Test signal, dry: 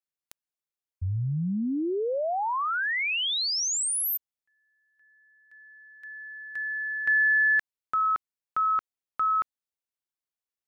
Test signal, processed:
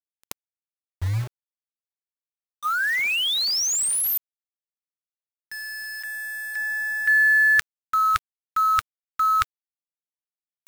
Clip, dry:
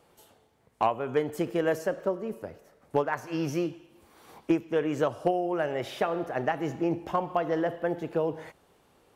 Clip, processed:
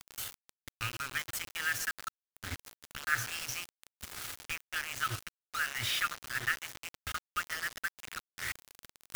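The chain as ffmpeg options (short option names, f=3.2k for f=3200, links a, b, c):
-af "areverse,acompressor=mode=upward:threshold=-38dB:ratio=2.5:attack=54:release=21:knee=2.83:detection=peak,areverse,afftfilt=real='re*(1-between(b*sr/4096,120,1200))':imag='im*(1-between(b*sr/4096,120,1200))':win_size=4096:overlap=0.75,acontrast=44,bandreject=f=375.2:t=h:w=4,bandreject=f=750.4:t=h:w=4,bandreject=f=1.1256k:t=h:w=4,bandreject=f=1.5008k:t=h:w=4,acrusher=bits=5:mix=0:aa=0.000001,volume=-1dB"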